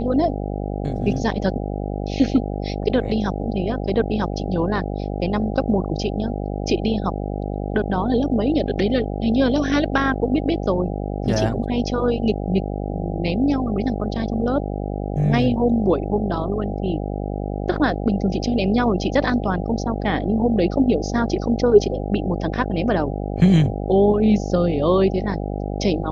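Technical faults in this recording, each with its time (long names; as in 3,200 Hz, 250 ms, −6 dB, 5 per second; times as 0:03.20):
mains buzz 50 Hz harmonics 16 −26 dBFS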